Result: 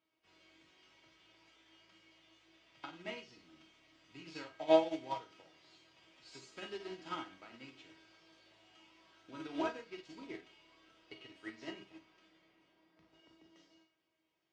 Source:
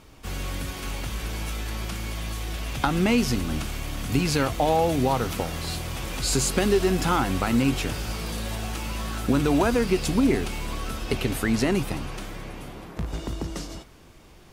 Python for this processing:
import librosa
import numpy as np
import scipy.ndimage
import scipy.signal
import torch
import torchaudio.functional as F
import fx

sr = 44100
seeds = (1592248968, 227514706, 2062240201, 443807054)

y = fx.cabinet(x, sr, low_hz=180.0, low_slope=12, high_hz=5800.0, hz=(220.0, 2100.0, 3000.0), db=(-9, 5, 5))
y = fx.comb_fb(y, sr, f0_hz=320.0, decay_s=0.33, harmonics='all', damping=0.0, mix_pct=90)
y = fx.rev_schroeder(y, sr, rt60_s=0.36, comb_ms=31, drr_db=3.5)
y = fx.upward_expand(y, sr, threshold_db=-42.0, expansion=2.5)
y = y * librosa.db_to_amplitude(5.5)